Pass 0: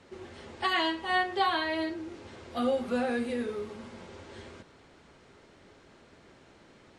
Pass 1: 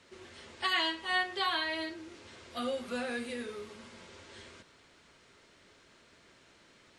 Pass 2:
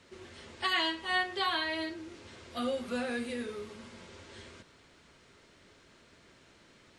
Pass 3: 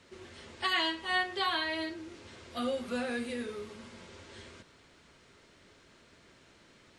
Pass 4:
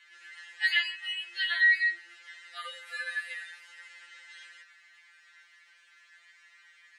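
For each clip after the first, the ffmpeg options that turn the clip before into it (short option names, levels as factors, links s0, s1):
-af "tiltshelf=f=1300:g=-5.5,bandreject=f=800:w=12,volume=0.708"
-af "lowshelf=f=320:g=5"
-af anull
-af "highpass=f=1800:t=q:w=5,afftfilt=real='re*2.83*eq(mod(b,8),0)':imag='im*2.83*eq(mod(b,8),0)':win_size=2048:overlap=0.75"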